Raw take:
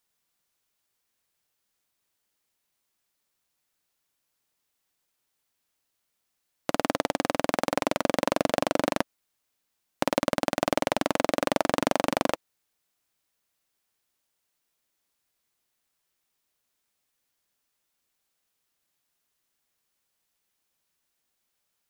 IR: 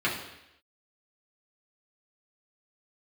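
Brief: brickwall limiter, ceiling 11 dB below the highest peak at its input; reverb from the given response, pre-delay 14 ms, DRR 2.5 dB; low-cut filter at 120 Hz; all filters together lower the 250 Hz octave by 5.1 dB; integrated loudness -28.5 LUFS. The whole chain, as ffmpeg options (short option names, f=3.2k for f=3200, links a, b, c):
-filter_complex "[0:a]highpass=120,equalizer=f=250:t=o:g=-6,alimiter=limit=-16dB:level=0:latency=1,asplit=2[a][b];[1:a]atrim=start_sample=2205,adelay=14[c];[b][c]afir=irnorm=-1:irlink=0,volume=-14.5dB[d];[a][d]amix=inputs=2:normalize=0,volume=8dB"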